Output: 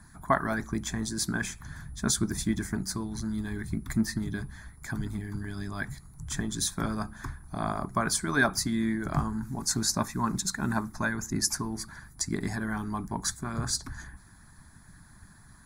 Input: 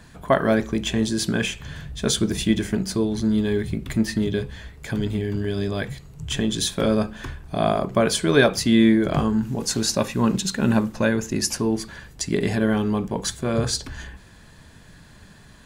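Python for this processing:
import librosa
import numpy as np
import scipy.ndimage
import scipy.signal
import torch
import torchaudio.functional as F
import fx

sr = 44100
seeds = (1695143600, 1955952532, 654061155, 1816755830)

y = x + 10.0 ** (-52.0 / 20.0) * np.sin(2.0 * np.pi * 10000.0 * np.arange(len(x)) / sr)
y = fx.fixed_phaser(y, sr, hz=1200.0, stages=4)
y = fx.hpss(y, sr, part='harmonic', gain_db=-10)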